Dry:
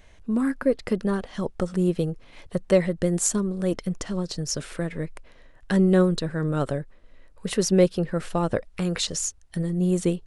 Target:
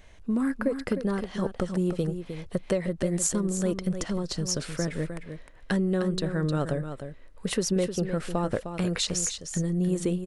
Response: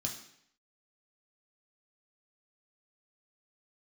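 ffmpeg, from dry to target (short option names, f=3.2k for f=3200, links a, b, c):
-af "acompressor=threshold=-22dB:ratio=10,aecho=1:1:307:0.355"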